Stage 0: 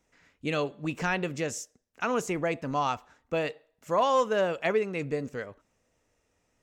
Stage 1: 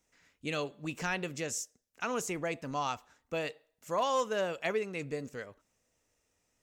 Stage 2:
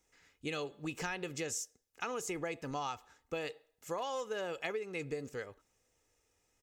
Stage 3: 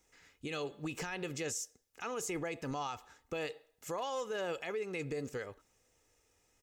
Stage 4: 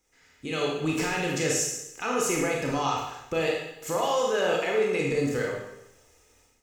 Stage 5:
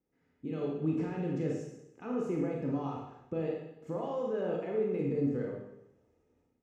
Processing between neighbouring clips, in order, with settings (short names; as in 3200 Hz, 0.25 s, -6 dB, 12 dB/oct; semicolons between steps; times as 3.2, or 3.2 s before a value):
high shelf 3600 Hz +9.5 dB; gain -6.5 dB
comb 2.4 ms, depth 37%; compressor 10:1, threshold -34 dBFS, peak gain reduction 10 dB
limiter -33 dBFS, peak gain reduction 11 dB; gain +3.5 dB
Schroeder reverb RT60 0.86 s, combs from 25 ms, DRR -2 dB; AGC gain up to 10.5 dB; gain -2 dB
band-pass 210 Hz, Q 1.2